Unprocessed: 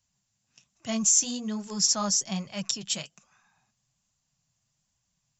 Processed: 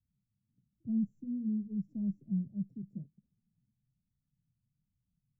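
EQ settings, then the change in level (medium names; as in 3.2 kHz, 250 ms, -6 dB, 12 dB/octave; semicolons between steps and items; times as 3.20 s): inverse Chebyshev low-pass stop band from 1.2 kHz, stop band 70 dB; 0.0 dB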